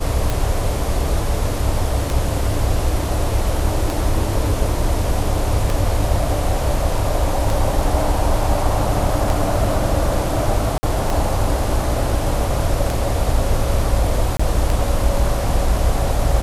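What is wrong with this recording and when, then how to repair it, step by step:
scratch tick 33 1/3 rpm
0:10.78–0:10.83: drop-out 50 ms
0:14.37–0:14.39: drop-out 25 ms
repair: click removal
repair the gap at 0:10.78, 50 ms
repair the gap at 0:14.37, 25 ms

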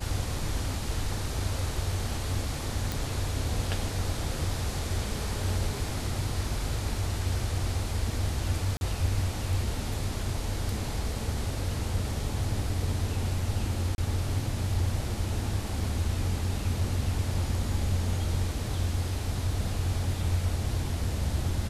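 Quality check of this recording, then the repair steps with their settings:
0:02.92: click
0:08.77–0:08.81: drop-out 41 ms
0:13.95–0:13.98: drop-out 31 ms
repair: click removal
repair the gap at 0:08.77, 41 ms
repair the gap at 0:13.95, 31 ms

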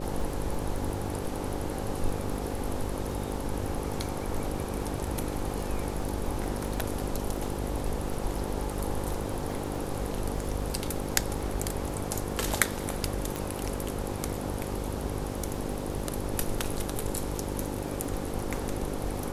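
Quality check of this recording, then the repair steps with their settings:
mains buzz 50 Hz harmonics 11 −36 dBFS
surface crackle 20 per second −36 dBFS
0:13.36: click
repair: click removal
hum removal 50 Hz, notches 11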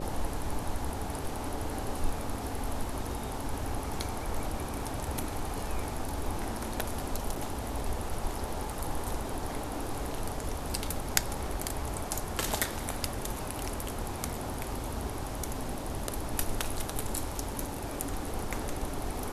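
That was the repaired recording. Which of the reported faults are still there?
none of them is left

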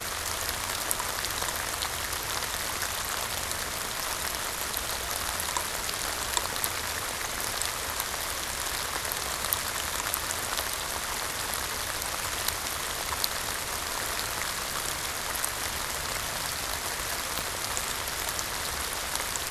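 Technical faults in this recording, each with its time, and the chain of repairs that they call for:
surface crackle 52 per second −38 dBFS
0:17.39: click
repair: click removal

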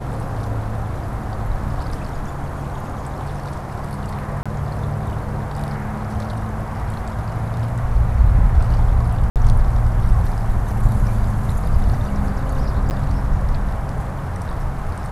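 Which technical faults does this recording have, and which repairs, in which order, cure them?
0:04.43–0:04.46: drop-out 26 ms
0:09.30–0:09.36: drop-out 58 ms
0:12.90–0:12.91: drop-out 9.4 ms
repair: repair the gap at 0:04.43, 26 ms
repair the gap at 0:09.30, 58 ms
repair the gap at 0:12.90, 9.4 ms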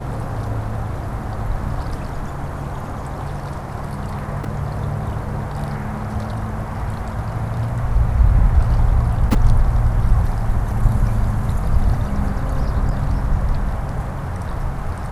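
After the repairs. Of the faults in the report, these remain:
none of them is left

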